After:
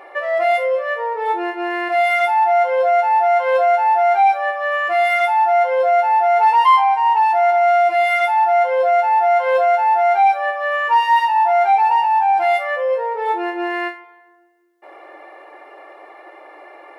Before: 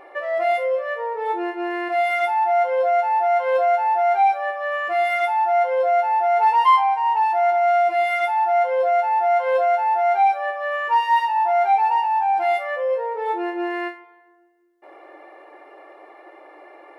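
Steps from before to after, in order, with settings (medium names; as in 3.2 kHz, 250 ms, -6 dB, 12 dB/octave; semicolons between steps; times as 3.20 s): high-pass 510 Hz 6 dB/octave; in parallel at 0 dB: peak limiter -15 dBFS, peak gain reduction 7 dB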